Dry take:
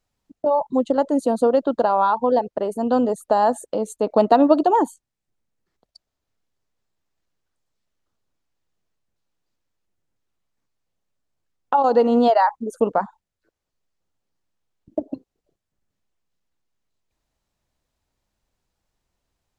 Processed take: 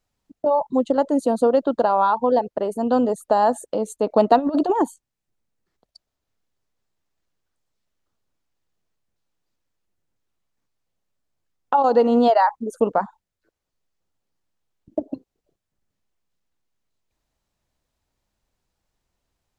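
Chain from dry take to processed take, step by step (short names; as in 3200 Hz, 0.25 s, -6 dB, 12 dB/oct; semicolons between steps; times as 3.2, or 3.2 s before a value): 4.38–4.82 negative-ratio compressor -19 dBFS, ratio -0.5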